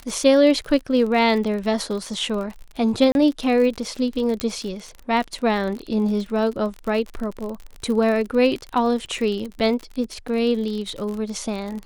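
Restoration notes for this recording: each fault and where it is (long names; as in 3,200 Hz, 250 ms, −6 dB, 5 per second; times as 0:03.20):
surface crackle 45 per second −28 dBFS
0:03.12–0:03.15: drop-out 31 ms
0:04.40: click −9 dBFS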